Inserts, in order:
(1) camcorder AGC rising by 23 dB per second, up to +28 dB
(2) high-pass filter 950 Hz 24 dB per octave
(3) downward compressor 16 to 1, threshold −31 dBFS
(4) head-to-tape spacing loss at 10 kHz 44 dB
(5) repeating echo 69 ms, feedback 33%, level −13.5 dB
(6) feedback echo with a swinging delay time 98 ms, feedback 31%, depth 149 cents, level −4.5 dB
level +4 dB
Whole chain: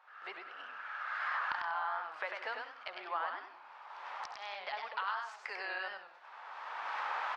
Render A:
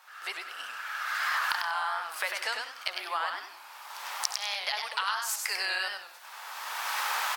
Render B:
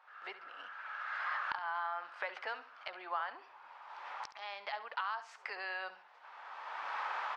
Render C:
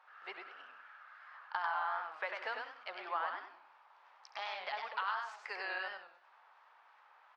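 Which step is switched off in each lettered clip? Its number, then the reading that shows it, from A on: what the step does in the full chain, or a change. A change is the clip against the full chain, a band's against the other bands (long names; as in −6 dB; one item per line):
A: 4, 4 kHz band +11.0 dB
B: 6, change in integrated loudness −1.5 LU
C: 1, change in crest factor +2.0 dB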